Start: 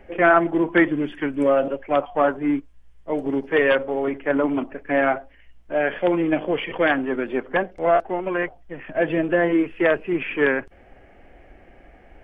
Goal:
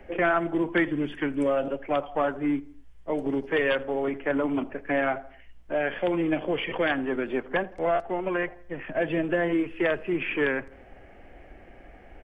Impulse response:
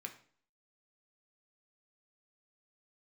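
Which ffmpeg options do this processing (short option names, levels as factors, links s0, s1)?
-filter_complex "[0:a]asplit=2[s0][s1];[s1]adelay=82,lowpass=f=2300:p=1,volume=0.0708,asplit=2[s2][s3];[s3]adelay=82,lowpass=f=2300:p=1,volume=0.48,asplit=2[s4][s5];[s5]adelay=82,lowpass=f=2300:p=1,volume=0.48[s6];[s2][s4][s6]amix=inputs=3:normalize=0[s7];[s0][s7]amix=inputs=2:normalize=0,acrossover=split=130|3000[s8][s9][s10];[s9]acompressor=threshold=0.0447:ratio=2[s11];[s8][s11][s10]amix=inputs=3:normalize=0"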